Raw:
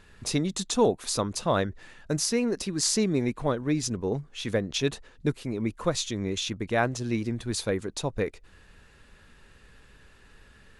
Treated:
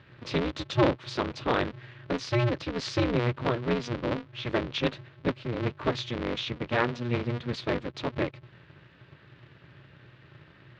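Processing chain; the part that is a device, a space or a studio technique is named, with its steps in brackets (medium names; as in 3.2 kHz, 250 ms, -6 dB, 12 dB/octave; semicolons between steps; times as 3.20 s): ring modulator pedal into a guitar cabinet (polarity switched at an audio rate 120 Hz; cabinet simulation 84–3900 Hz, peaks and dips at 130 Hz +6 dB, 210 Hz -4 dB, 760 Hz -6 dB)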